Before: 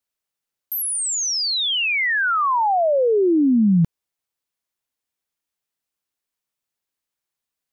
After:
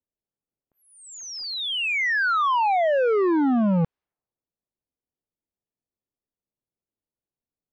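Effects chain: low-pass opened by the level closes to 490 Hz, open at -19.5 dBFS; overloaded stage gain 22 dB; Bessel low-pass 2100 Hz, order 2; gain +3 dB

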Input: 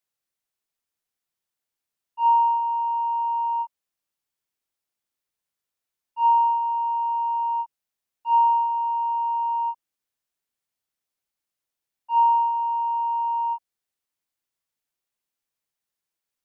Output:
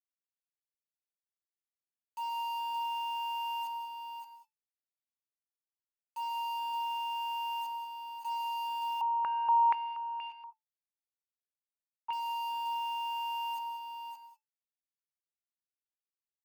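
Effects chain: per-bin compression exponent 0.6; limiter -17 dBFS, peak gain reduction 4 dB; soft clip -26 dBFS, distortion -13 dB; bit-crush 7-bit; resonator 880 Hz, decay 0.17 s, harmonics all, mix 80%; echo 0.572 s -7 dB; non-linear reverb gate 0.22 s rising, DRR 9 dB; 9.01–12.13 stepped low-pass 4.2 Hz 780–2500 Hz; gain +3.5 dB

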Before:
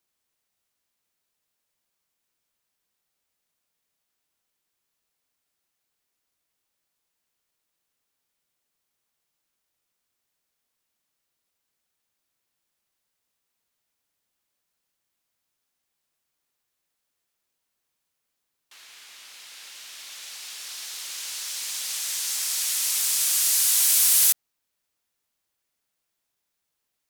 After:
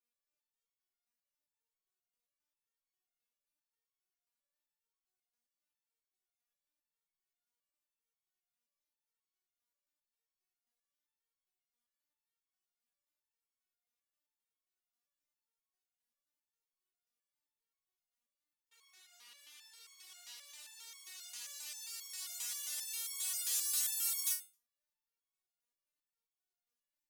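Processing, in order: 19.05–20.33 flutter echo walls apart 3.4 m, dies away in 0.21 s; stepped resonator 7.5 Hz 240–1100 Hz

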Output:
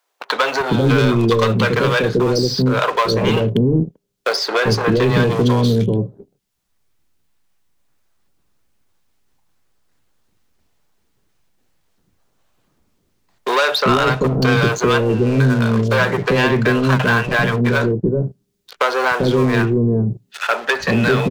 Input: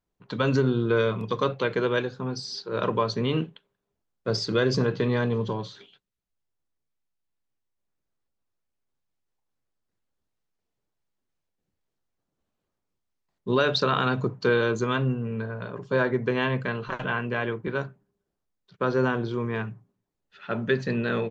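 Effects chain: sample leveller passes 3; bands offset in time highs, lows 0.39 s, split 520 Hz; three-band squash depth 70%; gain +3.5 dB

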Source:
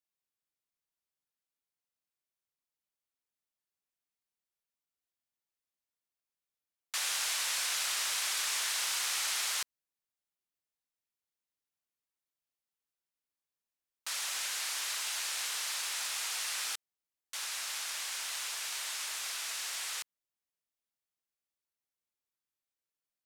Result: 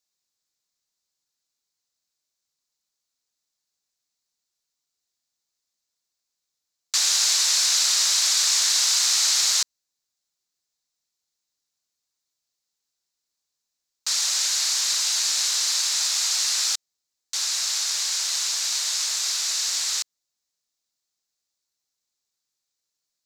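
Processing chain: band shelf 5400 Hz +11.5 dB 1.2 oct; gain +4.5 dB

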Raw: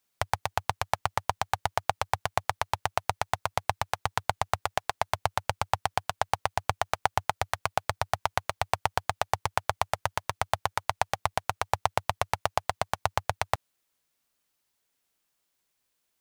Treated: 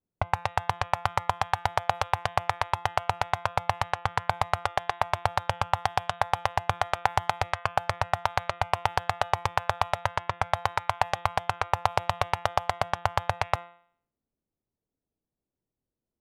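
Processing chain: low-pass opened by the level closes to 350 Hz, open at -26 dBFS; de-hum 172.8 Hz, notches 22; in parallel at -1.5 dB: limiter -15 dBFS, peak gain reduction 9.5 dB

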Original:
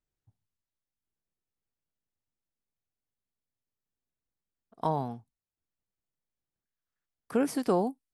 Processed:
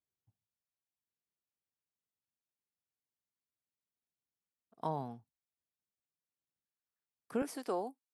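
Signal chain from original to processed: HPF 88 Hz 12 dB/oct, from 7.42 s 370 Hz; gain -7.5 dB

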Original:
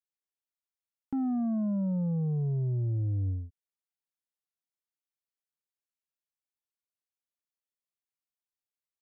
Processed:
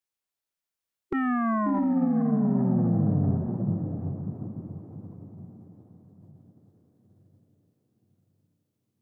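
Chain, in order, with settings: diffused feedback echo 0.733 s, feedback 40%, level -5 dB; formant shift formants +6 st; gain +5 dB

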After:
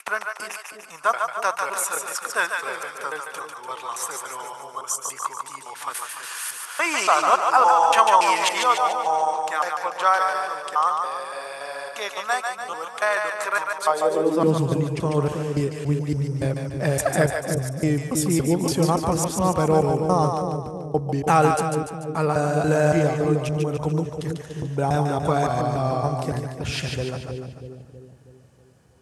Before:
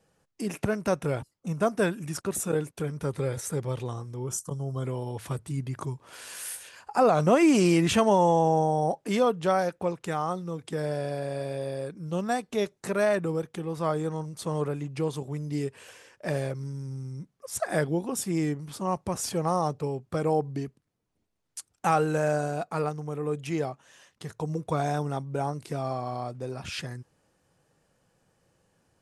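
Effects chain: slices in reverse order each 0.283 s, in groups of 3; split-band echo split 530 Hz, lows 0.321 s, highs 0.146 s, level -4.5 dB; high-pass sweep 1100 Hz -> 62 Hz, 13.8–14.99; gain +6 dB

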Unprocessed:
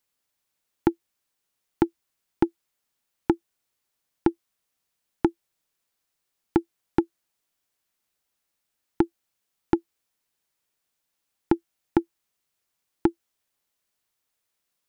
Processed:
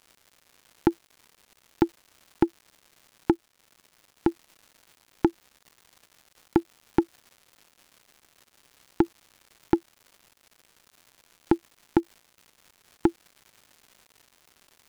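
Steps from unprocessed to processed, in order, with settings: crackle 280/s -42 dBFS; 3.33–4.28 transient shaper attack -2 dB, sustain -6 dB

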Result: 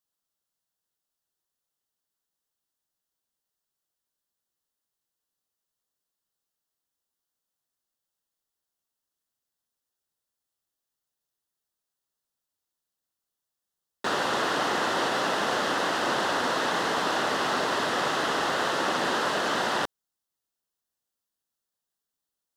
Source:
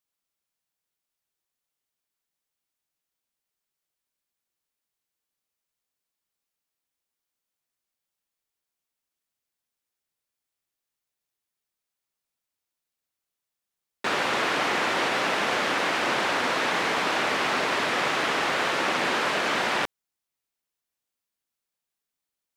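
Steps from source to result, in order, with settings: bell 2300 Hz -14.5 dB 0.32 oct

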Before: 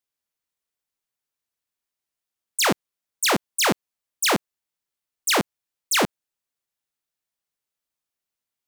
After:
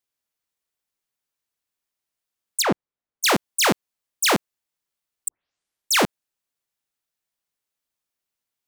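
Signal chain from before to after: 2.62–3.24 LPF 1100 Hz 6 dB/oct; 5.28 tape start 0.72 s; gain +1.5 dB

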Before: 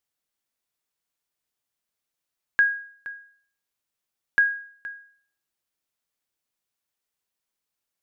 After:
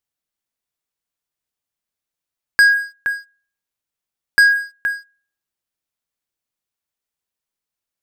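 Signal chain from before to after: low shelf 170 Hz +4.5 dB; sample leveller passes 3; gain +4 dB

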